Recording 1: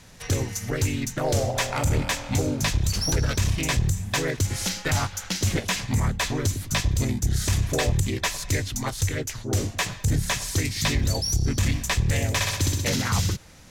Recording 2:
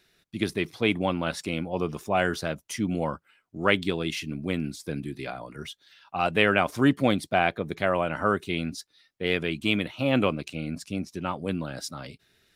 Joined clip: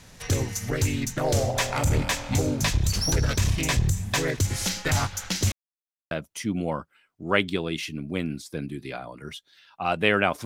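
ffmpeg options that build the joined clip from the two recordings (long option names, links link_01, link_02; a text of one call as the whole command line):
ffmpeg -i cue0.wav -i cue1.wav -filter_complex "[0:a]apad=whole_dur=10.45,atrim=end=10.45,asplit=2[link_01][link_02];[link_01]atrim=end=5.52,asetpts=PTS-STARTPTS,afade=type=out:start_time=5.516:duration=0.004:curve=hsin[link_03];[link_02]atrim=start=5.52:end=6.11,asetpts=PTS-STARTPTS,volume=0[link_04];[1:a]atrim=start=2.45:end=6.79,asetpts=PTS-STARTPTS,afade=type=in:duration=0.004:curve=hsin[link_05];[link_03][link_04][link_05]concat=n=3:v=0:a=1" out.wav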